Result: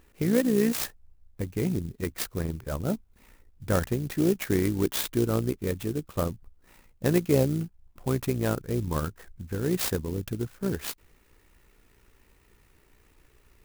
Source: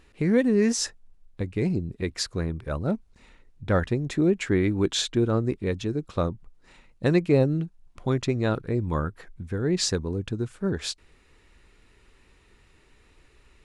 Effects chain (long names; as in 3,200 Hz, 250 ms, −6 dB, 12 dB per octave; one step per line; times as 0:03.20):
amplitude modulation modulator 60 Hz, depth 35%
converter with an unsteady clock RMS 0.058 ms